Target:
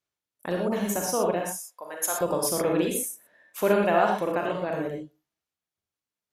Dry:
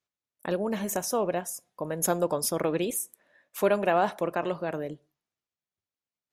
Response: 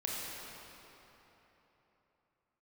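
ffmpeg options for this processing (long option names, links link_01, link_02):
-filter_complex "[0:a]asettb=1/sr,asplit=3[link_01][link_02][link_03];[link_01]atrim=end=1.474[link_04];[link_02]atrim=start=1.47:end=2.21,asetpts=PTS-STARTPTS,afade=type=in:duration=0.004:curve=qsin,afade=type=out:start_time=0.736:duration=0.004:curve=qsin,highpass=810[link_05];[link_03]atrim=start=2.206[link_06];[link_04][link_05]acrossfade=duration=0.004:curve1=hsin:curve2=qsin[link_07];[link_07][link_06]acrossfade=duration=0.004:curve1=qsin:curve2=hsin[link_08];[1:a]atrim=start_sample=2205,atrim=end_sample=3969,asetrate=30870,aresample=44100[link_09];[link_08][link_09]afir=irnorm=-1:irlink=0"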